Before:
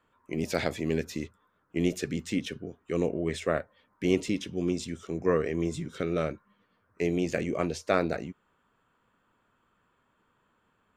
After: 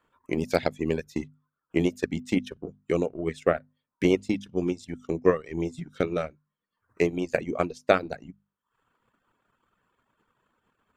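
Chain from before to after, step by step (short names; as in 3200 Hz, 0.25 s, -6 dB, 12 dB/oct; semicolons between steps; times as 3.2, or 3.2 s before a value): transient shaper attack +8 dB, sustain -9 dB; reverb removal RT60 0.71 s; notches 50/100/150/200/250 Hz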